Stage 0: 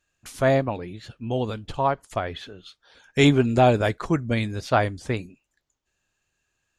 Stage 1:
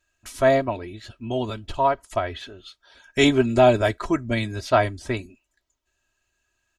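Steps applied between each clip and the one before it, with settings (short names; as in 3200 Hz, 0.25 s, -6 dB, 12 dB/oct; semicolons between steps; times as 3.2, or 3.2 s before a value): bell 290 Hz -5 dB 0.36 oct; comb 3.1 ms, depth 73%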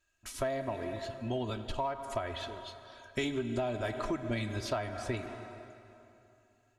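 plate-style reverb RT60 2.8 s, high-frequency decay 0.8×, DRR 11 dB; in parallel at -10.5 dB: hard clip -19 dBFS, distortion -7 dB; on the sum: compressor 12:1, threshold -23 dBFS, peak gain reduction 13.5 dB; gain -7 dB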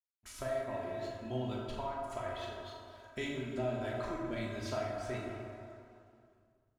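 backlash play -57 dBFS; on a send: flutter echo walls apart 6.8 m, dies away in 0.28 s; on the sum: plate-style reverb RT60 1.7 s, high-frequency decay 0.5×, DRR -1.5 dB; gain -8 dB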